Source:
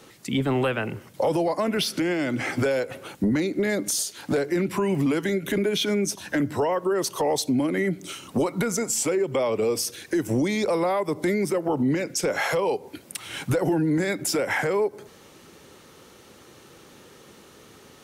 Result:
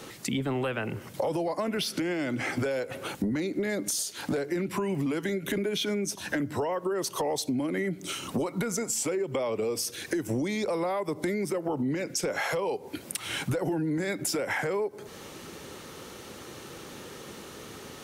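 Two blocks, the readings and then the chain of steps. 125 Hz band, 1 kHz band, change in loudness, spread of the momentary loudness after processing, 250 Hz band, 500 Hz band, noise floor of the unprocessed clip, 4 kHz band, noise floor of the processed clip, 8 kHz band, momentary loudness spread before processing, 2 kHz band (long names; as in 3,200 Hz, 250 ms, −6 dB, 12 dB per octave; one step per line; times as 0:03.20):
−5.0 dB, −5.0 dB, −5.0 dB, 14 LU, −5.5 dB, −5.5 dB, −51 dBFS, −3.5 dB, −45 dBFS, −3.5 dB, 5 LU, −4.5 dB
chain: downward compressor 3 to 1, threshold −37 dBFS, peak gain reduction 13 dB
level +6 dB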